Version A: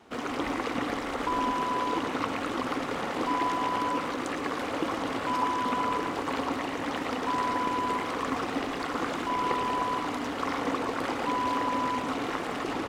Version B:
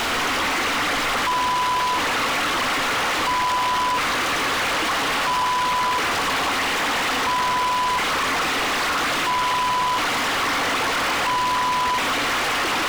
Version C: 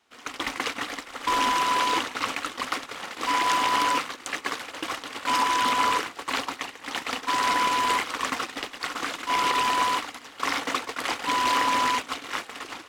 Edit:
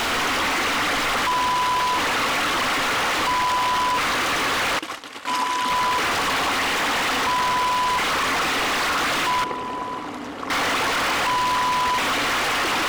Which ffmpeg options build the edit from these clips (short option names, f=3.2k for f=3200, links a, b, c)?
-filter_complex "[1:a]asplit=3[a][b][c];[a]atrim=end=4.792[d];[2:a]atrim=start=4.788:end=5.702[e];[b]atrim=start=5.698:end=9.442[f];[0:a]atrim=start=9.438:end=10.502[g];[c]atrim=start=10.498[h];[d][e]acrossfade=d=0.004:c1=hsin:c2=hsin[i];[i][f]acrossfade=d=0.004:c1=hsin:c2=hsin[j];[j][g]acrossfade=d=0.004:c1=hsin:c2=hsin[k];[k][h]acrossfade=d=0.004:c1=hsin:c2=hsin"